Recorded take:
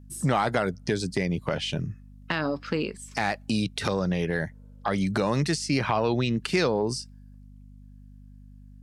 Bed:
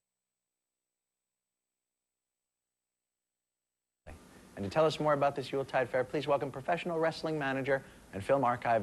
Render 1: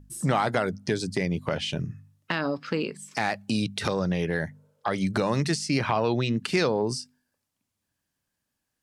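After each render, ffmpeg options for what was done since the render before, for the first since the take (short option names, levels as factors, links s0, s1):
-af "bandreject=f=50:t=h:w=4,bandreject=f=100:t=h:w=4,bandreject=f=150:t=h:w=4,bandreject=f=200:t=h:w=4,bandreject=f=250:t=h:w=4"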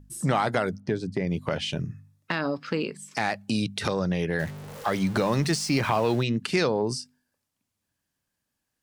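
-filter_complex "[0:a]asettb=1/sr,asplit=3[s0][s1][s2];[s0]atrim=end=0.804[s3];[s1]atrim=start=0.8:end=1.27,asetpts=PTS-STARTPTS,afade=t=in:d=0.004:c=qsin,afade=t=out:st=0.466:d=0.004:c=qsin,lowpass=f=1200:p=1[s4];[s2]atrim=start=1.266[s5];[s3][s4]acrossfade=d=0.004:c1=hsin:c2=qsin[s6];[s6][s5]acrossfade=d=0.004:c1=qsin:c2=hsin,asettb=1/sr,asplit=3[s7][s8][s9];[s7]atrim=end=1.814[s10];[s8]atrim=start=1.81:end=2.4,asetpts=PTS-STARTPTS,afade=t=in:d=0.004:c=qsin,afade=t=out:st=0.586:d=0.004:c=qsin,bandreject=f=3000:w=12[s11];[s9]atrim=start=2.396[s12];[s10][s11]acrossfade=d=0.004:c1=hsin:c2=qsin[s13];[s13][s12]acrossfade=d=0.004:c1=qsin:c2=hsin,asettb=1/sr,asplit=3[s14][s15][s16];[s14]atrim=end=4.394[s17];[s15]atrim=start=4.39:end=6.23,asetpts=PTS-STARTPTS,afade=t=in:d=0.004:c=qsin,afade=t=out:st=1.836:d=0.004:c=qsin,aeval=exprs='val(0)+0.5*0.0178*sgn(val(0))':c=same[s18];[s16]atrim=start=6.226[s19];[s17][s18]acrossfade=d=0.004:c1=hsin:c2=qsin[s20];[s20][s19]acrossfade=d=0.004:c1=qsin:c2=hsin"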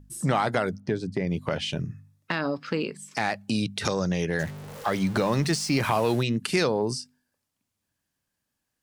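-filter_complex "[0:a]asettb=1/sr,asplit=3[s0][s1][s2];[s0]atrim=end=3.854[s3];[s1]atrim=start=3.85:end=4.43,asetpts=PTS-STARTPTS,afade=t=in:d=0.004:c=qsin,afade=t=out:st=0.576:d=0.004:c=qsin,equalizer=f=6600:t=o:w=0.55:g=14[s4];[s2]atrim=start=4.426[s5];[s3][s4]acrossfade=d=0.004:c1=hsin:c2=qsin[s6];[s6][s5]acrossfade=d=0.004:c1=qsin:c2=hsin,asettb=1/sr,asplit=3[s7][s8][s9];[s7]atrim=end=5.804[s10];[s8]atrim=start=5.8:end=6.91,asetpts=PTS-STARTPTS,afade=t=in:d=0.004:c=qsin,afade=t=out:st=1.106:d=0.004:c=qsin,equalizer=f=11000:w=1:g=9.5[s11];[s9]atrim=start=6.906[s12];[s10][s11]acrossfade=d=0.004:c1=hsin:c2=qsin[s13];[s13][s12]acrossfade=d=0.004:c1=qsin:c2=hsin"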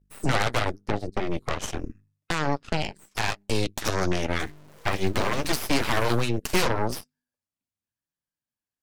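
-af "flanger=delay=5.2:depth=6.5:regen=-34:speed=0.85:shape=triangular,aeval=exprs='0.224*(cos(1*acos(clip(val(0)/0.224,-1,1)))-cos(1*PI/2))+0.0224*(cos(7*acos(clip(val(0)/0.224,-1,1)))-cos(7*PI/2))+0.0794*(cos(8*acos(clip(val(0)/0.224,-1,1)))-cos(8*PI/2))':c=same"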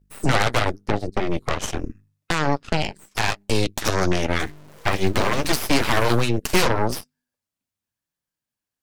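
-af "volume=1.68"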